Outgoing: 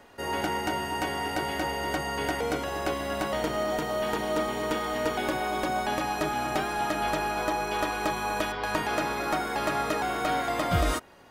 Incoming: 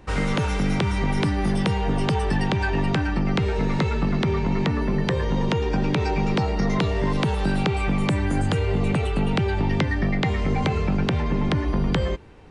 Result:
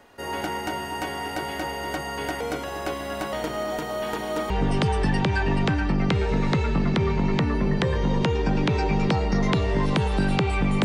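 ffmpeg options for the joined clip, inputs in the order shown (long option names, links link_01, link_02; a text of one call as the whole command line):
ffmpeg -i cue0.wav -i cue1.wav -filter_complex "[0:a]apad=whole_dur=10.84,atrim=end=10.84,atrim=end=4.502[link_01];[1:a]atrim=start=1.768:end=8.11[link_02];[link_01][link_02]acrossfade=duration=0.004:curve1=hsin:curve2=hsin" out.wav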